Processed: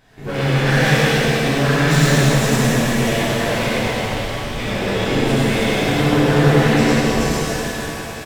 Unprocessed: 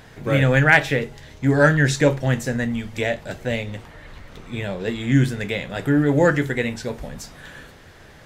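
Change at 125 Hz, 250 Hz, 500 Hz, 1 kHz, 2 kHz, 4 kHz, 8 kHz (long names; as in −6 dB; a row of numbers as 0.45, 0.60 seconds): +4.5, +4.5, +4.0, +6.5, +2.0, +11.0, +10.5 decibels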